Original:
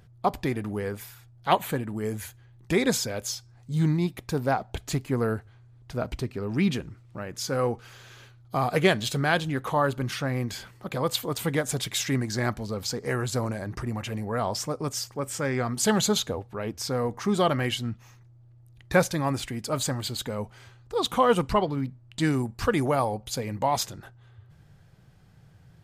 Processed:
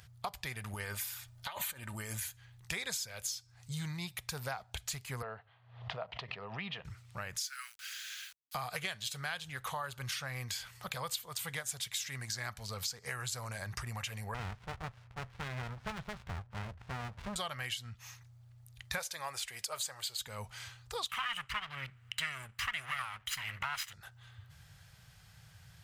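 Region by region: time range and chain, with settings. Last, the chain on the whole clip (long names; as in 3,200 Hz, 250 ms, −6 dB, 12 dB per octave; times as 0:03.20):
0:00.73–0:02.20: compressor whose output falls as the input rises −32 dBFS + comb filter 3.3 ms, depth 46%
0:05.22–0:06.85: loudspeaker in its box 240–2,800 Hz, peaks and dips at 250 Hz −8 dB, 360 Hz −8 dB, 680 Hz +4 dB, 1,500 Hz −10 dB, 2,300 Hz −9 dB + background raised ahead of every attack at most 92 dB per second
0:07.38–0:08.55: Butterworth high-pass 1,400 Hz 48 dB per octave + bit-depth reduction 10 bits, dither none
0:14.34–0:17.36: low-pass filter 1,500 Hz 24 dB per octave + windowed peak hold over 65 samples
0:18.98–0:20.19: low shelf with overshoot 310 Hz −10 dB, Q 1.5 + one half of a high-frequency compander encoder only
0:21.09–0:23.93: lower of the sound and its delayed copy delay 1 ms + flat-topped bell 2,000 Hz +13 dB
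whole clip: high-pass filter 56 Hz; guitar amp tone stack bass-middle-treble 10-0-10; downward compressor 5 to 1, threshold −47 dBFS; level +9.5 dB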